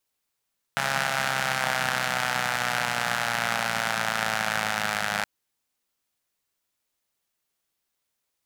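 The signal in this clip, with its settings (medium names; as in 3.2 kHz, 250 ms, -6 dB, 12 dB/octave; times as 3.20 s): four-cylinder engine model, changing speed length 4.47 s, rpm 4100, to 3100, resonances 180/780/1400 Hz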